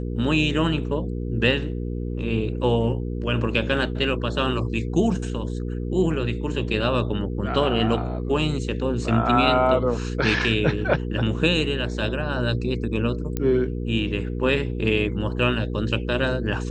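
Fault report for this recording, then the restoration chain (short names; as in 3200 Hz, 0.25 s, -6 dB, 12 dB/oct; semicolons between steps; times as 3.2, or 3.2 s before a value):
hum 60 Hz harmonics 8 -28 dBFS
13.37 pop -12 dBFS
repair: de-click; de-hum 60 Hz, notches 8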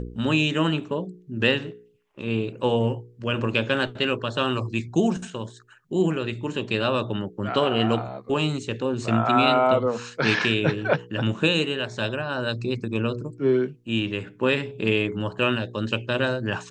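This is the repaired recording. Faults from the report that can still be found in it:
none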